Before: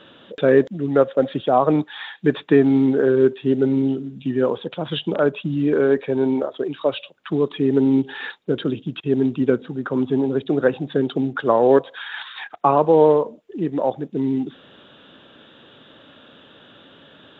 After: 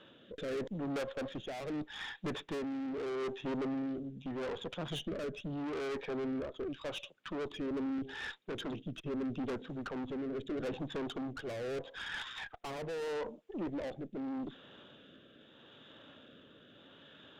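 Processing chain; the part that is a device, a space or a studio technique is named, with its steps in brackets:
overdriven rotary cabinet (tube saturation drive 28 dB, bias 0.5; rotating-speaker cabinet horn 0.8 Hz)
level −5.5 dB

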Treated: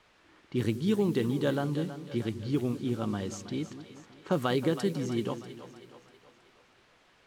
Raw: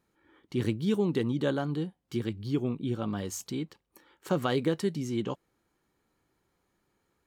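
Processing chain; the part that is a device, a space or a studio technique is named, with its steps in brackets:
cassette deck with a dynamic noise filter (white noise bed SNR 23 dB; low-pass that shuts in the quiet parts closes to 2,500 Hz, open at −24 dBFS)
echo with a time of its own for lows and highs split 440 Hz, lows 194 ms, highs 321 ms, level −12 dB

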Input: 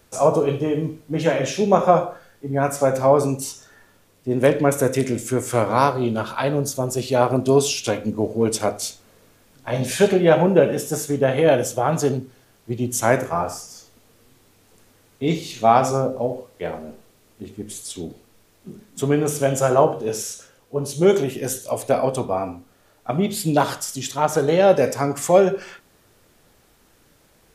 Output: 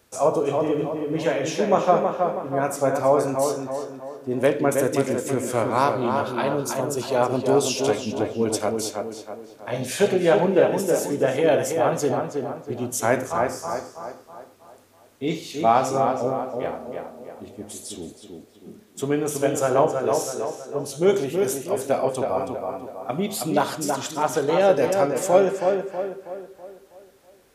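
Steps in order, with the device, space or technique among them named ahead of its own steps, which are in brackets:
high-pass filter 170 Hz 6 dB per octave
low shelf boost with a cut just above (low-shelf EQ 98 Hz +7 dB; parametric band 150 Hz −4.5 dB 0.58 octaves)
0:22.27–0:23.37: high-shelf EQ 6,400 Hz +5.5 dB
tape delay 323 ms, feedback 50%, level −3.5 dB, low-pass 2,300 Hz
level −3 dB

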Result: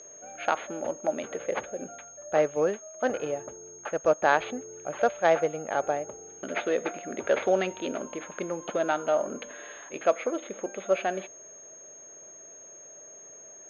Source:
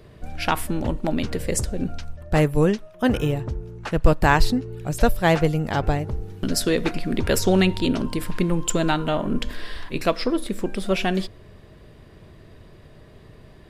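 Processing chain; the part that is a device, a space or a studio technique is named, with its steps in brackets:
toy sound module (linearly interpolated sample-rate reduction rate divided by 6×; switching amplifier with a slow clock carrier 6,500 Hz; loudspeaker in its box 580–3,900 Hz, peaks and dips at 580 Hz +6 dB, 1,000 Hz −8 dB, 1,900 Hz −5 dB, 2,800 Hz −4 dB)

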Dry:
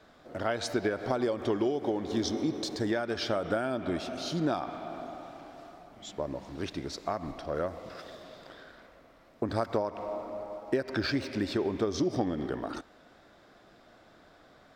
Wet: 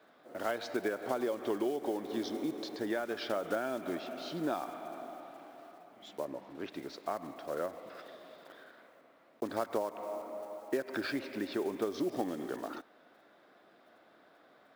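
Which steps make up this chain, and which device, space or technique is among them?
early digital voice recorder (band-pass filter 250–3,600 Hz; one scale factor per block 5 bits)
0:06.25–0:06.72: high-shelf EQ 5,000 Hz −8.5 dB
level −3.5 dB

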